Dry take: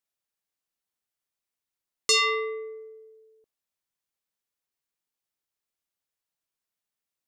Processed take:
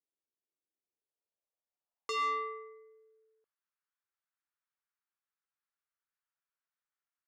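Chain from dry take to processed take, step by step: band-pass sweep 350 Hz -> 1.4 kHz, 0.76–2.84 s; Chebyshev shaper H 2 -39 dB, 5 -24 dB, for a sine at -24.5 dBFS

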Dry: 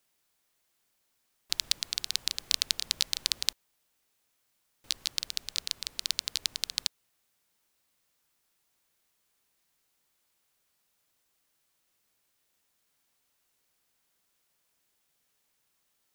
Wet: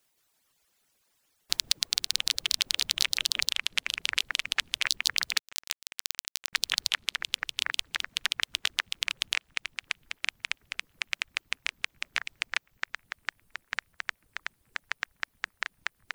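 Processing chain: on a send: feedback echo behind a band-pass 466 ms, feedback 65%, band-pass 1.6 kHz, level -22 dB; on the sum: peak limiter -7.5 dBFS, peak gain reduction 6 dB; ever faster or slower copies 169 ms, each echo -5 st, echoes 3; harmonic-percussive split harmonic -9 dB; reverb removal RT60 1.1 s; 5.39–6.53 s: power-law waveshaper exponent 3; trim +6.5 dB

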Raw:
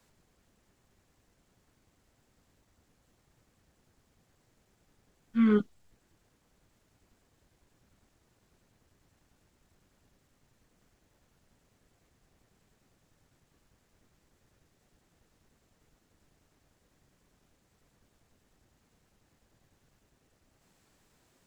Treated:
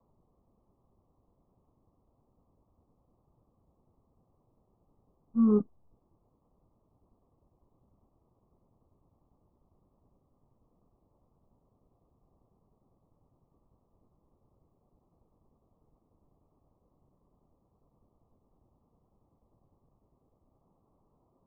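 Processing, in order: steep low-pass 1.2 kHz 96 dB/octave

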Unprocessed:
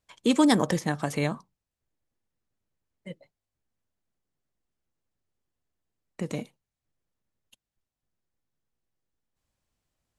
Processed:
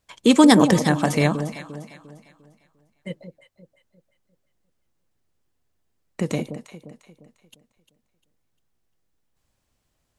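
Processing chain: echo whose repeats swap between lows and highs 175 ms, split 840 Hz, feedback 60%, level -8.5 dB; trim +7.5 dB

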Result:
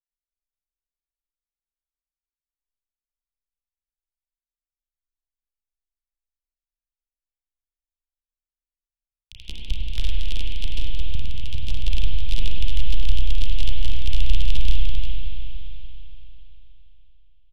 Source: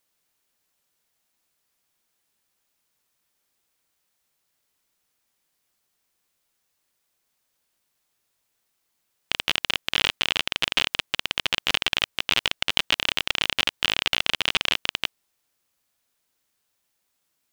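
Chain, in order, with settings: local Wiener filter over 41 samples; in parallel at -9 dB: crossover distortion -30.5 dBFS; on the sum: inverse Chebyshev band-stop 160–1200 Hz, stop band 70 dB; waveshaping leveller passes 5; RIAA curve playback; level held to a coarse grid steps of 13 dB; feedback delay 101 ms, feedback 38%, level -17.5 dB; spring tank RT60 3.7 s, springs 32/41/48 ms, chirp 70 ms, DRR -3 dB; trim -4 dB

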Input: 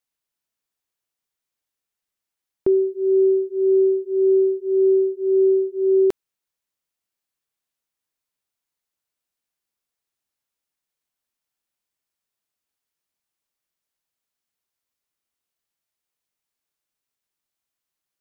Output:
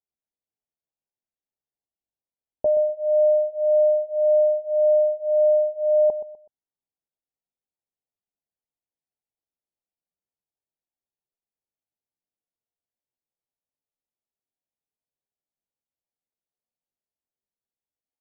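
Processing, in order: steep low-pass 560 Hz 48 dB/octave; pitch shift +8 st; feedback delay 125 ms, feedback 30%, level -12.5 dB; trim -3 dB

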